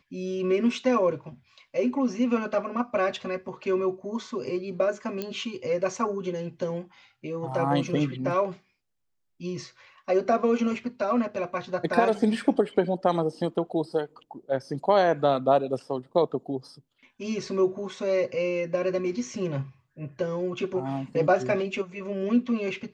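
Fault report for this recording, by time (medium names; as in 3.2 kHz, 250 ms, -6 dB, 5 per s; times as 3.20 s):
5.22 s: pop -17 dBFS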